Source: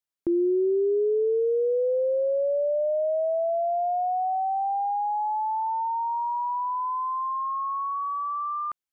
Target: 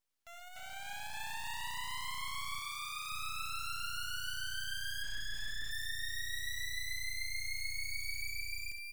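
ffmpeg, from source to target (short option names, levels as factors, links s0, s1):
-filter_complex "[0:a]asoftclip=type=hard:threshold=0.0251,dynaudnorm=f=170:g=11:m=3.55,aderivative,acompressor=threshold=0.0112:ratio=6,aecho=1:1:67.06|291.5:0.398|0.794,asplit=3[s0][s1][s2];[s0]afade=t=out:st=5.02:d=0.02[s3];[s1]asplit=2[s4][s5];[s5]highpass=f=720:p=1,volume=25.1,asoftclip=type=tanh:threshold=0.0316[s6];[s4][s6]amix=inputs=2:normalize=0,lowpass=f=1200:p=1,volume=0.501,afade=t=in:st=5.02:d=0.02,afade=t=out:st=5.7:d=0.02[s7];[s2]afade=t=in:st=5.7:d=0.02[s8];[s3][s7][s8]amix=inputs=3:normalize=0,bandreject=f=60:t=h:w=6,bandreject=f=120:t=h:w=6,bandreject=f=180:t=h:w=6,bandreject=f=240:t=h:w=6,bandreject=f=300:t=h:w=6,bandreject=f=360:t=h:w=6,bandreject=f=420:t=h:w=6,aeval=exprs='abs(val(0))':c=same,asettb=1/sr,asplit=3[s9][s10][s11];[s9]atrim=end=2.594[s12];[s10]atrim=start=2.59:end=3.12,asetpts=PTS-STARTPTS,afade=t=in:d=0.004:c=qsin,afade=t=out:st=0.526:d=0.004:c=qsin,lowshelf=f=440:g=-10[s13];[s11]atrim=start=3.116[s14];[s12][s13]acrossfade=d=0.004:c1=hsin:c2=qsin[s15];[s15][s14]acrossfade=d=0.004:c1=qsin:c2=hsin,volume=1.33"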